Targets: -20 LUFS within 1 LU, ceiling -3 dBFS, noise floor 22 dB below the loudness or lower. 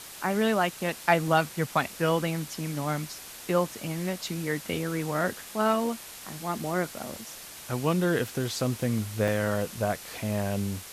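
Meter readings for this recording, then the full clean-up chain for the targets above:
dropouts 4; longest dropout 1.4 ms; noise floor -44 dBFS; noise floor target -51 dBFS; loudness -29.0 LUFS; peak -8.0 dBFS; loudness target -20.0 LUFS
-> interpolate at 1.28/4.28/7.16/9.28, 1.4 ms; noise print and reduce 7 dB; gain +9 dB; limiter -3 dBFS

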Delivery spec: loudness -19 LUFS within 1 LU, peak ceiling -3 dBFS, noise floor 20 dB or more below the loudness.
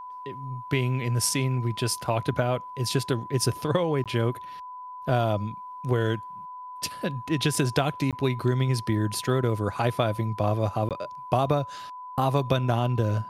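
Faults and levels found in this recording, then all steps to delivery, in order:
dropouts 3; longest dropout 17 ms; steady tone 1000 Hz; tone level -37 dBFS; loudness -27.0 LUFS; peak -7.0 dBFS; loudness target -19.0 LUFS
-> interpolate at 4.04/8.11/10.89, 17 ms; notch 1000 Hz, Q 30; gain +8 dB; limiter -3 dBFS

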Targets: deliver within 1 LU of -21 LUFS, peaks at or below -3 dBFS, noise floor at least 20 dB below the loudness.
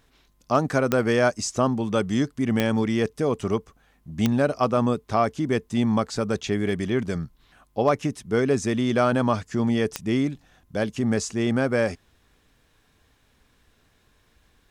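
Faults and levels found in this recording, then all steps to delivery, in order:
clicks 4; loudness -24.0 LUFS; peak -8.0 dBFS; loudness target -21.0 LUFS
-> de-click; gain +3 dB

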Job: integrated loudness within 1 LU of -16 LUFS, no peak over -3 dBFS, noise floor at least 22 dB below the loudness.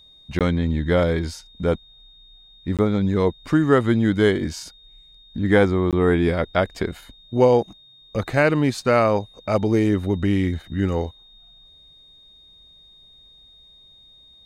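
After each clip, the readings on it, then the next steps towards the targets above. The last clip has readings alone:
dropouts 3; longest dropout 17 ms; steady tone 3700 Hz; tone level -48 dBFS; loudness -21.0 LUFS; peak -3.5 dBFS; loudness target -16.0 LUFS
-> interpolate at 0.39/2.77/5.91, 17 ms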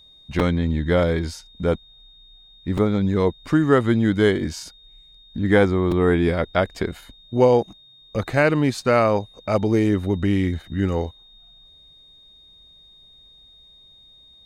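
dropouts 0; steady tone 3700 Hz; tone level -48 dBFS
-> notch 3700 Hz, Q 30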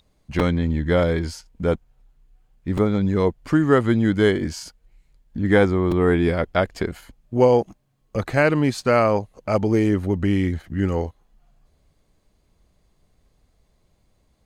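steady tone none; loudness -21.0 LUFS; peak -3.5 dBFS; loudness target -16.0 LUFS
-> gain +5 dB; limiter -3 dBFS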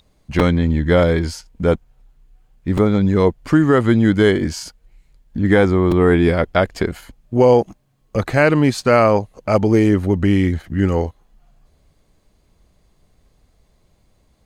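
loudness -16.5 LUFS; peak -3.0 dBFS; noise floor -60 dBFS

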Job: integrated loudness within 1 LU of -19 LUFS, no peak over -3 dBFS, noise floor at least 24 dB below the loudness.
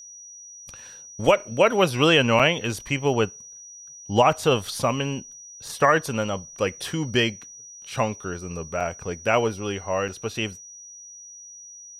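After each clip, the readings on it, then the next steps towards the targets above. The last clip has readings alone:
dropouts 3; longest dropout 5.7 ms; steady tone 5800 Hz; tone level -41 dBFS; loudness -23.5 LUFS; peak -4.5 dBFS; loudness target -19.0 LUFS
-> interpolate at 2.39/8.8/10.08, 5.7 ms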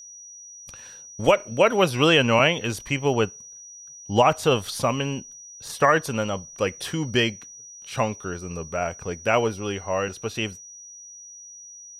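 dropouts 0; steady tone 5800 Hz; tone level -41 dBFS
-> notch 5800 Hz, Q 30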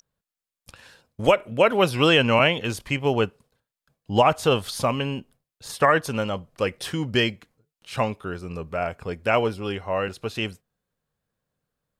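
steady tone none; loudness -23.0 LUFS; peak -4.5 dBFS; loudness target -19.0 LUFS
-> gain +4 dB; limiter -3 dBFS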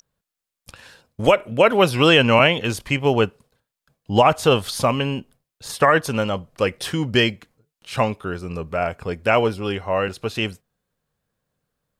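loudness -19.5 LUFS; peak -3.0 dBFS; noise floor -86 dBFS

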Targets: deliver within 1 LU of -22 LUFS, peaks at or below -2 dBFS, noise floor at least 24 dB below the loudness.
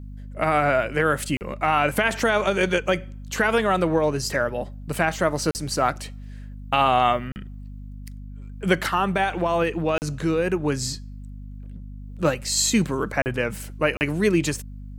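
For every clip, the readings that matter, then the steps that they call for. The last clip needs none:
dropouts 6; longest dropout 39 ms; hum 50 Hz; harmonics up to 250 Hz; hum level -35 dBFS; loudness -23.0 LUFS; peak -5.5 dBFS; loudness target -22.0 LUFS
-> interpolate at 1.37/5.51/7.32/9.98/13.22/13.97, 39 ms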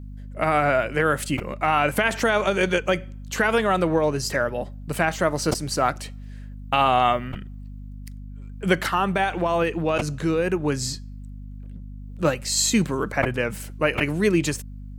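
dropouts 0; hum 50 Hz; harmonics up to 250 Hz; hum level -35 dBFS
-> de-hum 50 Hz, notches 5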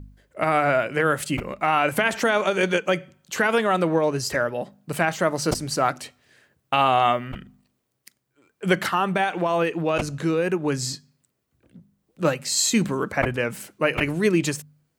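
hum none; loudness -23.0 LUFS; peak -6.0 dBFS; loudness target -22.0 LUFS
-> gain +1 dB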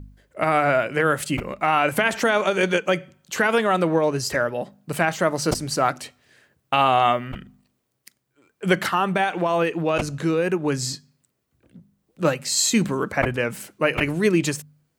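loudness -22.0 LUFS; peak -5.0 dBFS; noise floor -74 dBFS

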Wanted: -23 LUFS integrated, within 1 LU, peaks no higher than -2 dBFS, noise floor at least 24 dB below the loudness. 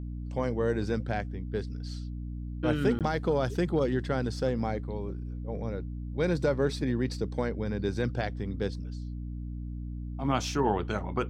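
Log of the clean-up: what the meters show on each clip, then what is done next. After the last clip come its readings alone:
dropouts 1; longest dropout 17 ms; hum 60 Hz; harmonics up to 300 Hz; hum level -34 dBFS; loudness -31.5 LUFS; peak -12.0 dBFS; loudness target -23.0 LUFS
-> interpolate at 2.99, 17 ms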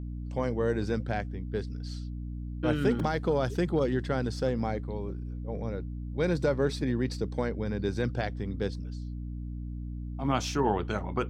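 dropouts 0; hum 60 Hz; harmonics up to 300 Hz; hum level -34 dBFS
-> notches 60/120/180/240/300 Hz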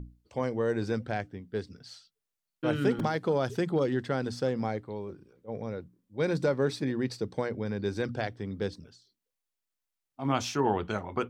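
hum none; loudness -31.5 LUFS; peak -12.5 dBFS; loudness target -23.0 LUFS
-> gain +8.5 dB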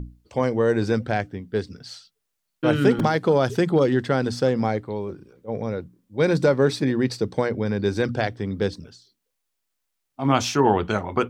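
loudness -23.0 LUFS; peak -4.0 dBFS; noise floor -78 dBFS

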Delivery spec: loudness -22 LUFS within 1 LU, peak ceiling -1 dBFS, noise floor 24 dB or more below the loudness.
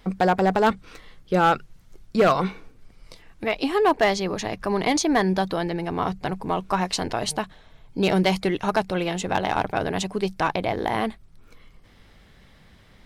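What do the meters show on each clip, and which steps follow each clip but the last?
clipped 0.5%; flat tops at -12.0 dBFS; loudness -24.0 LUFS; peak -12.0 dBFS; loudness target -22.0 LUFS
-> clip repair -12 dBFS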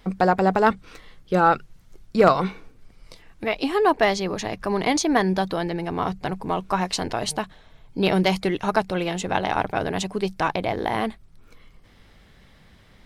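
clipped 0.0%; loudness -23.0 LUFS; peak -3.0 dBFS; loudness target -22.0 LUFS
-> gain +1 dB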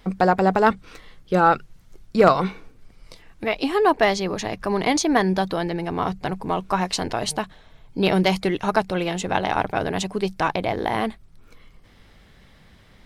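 loudness -22.0 LUFS; peak -2.0 dBFS; noise floor -52 dBFS

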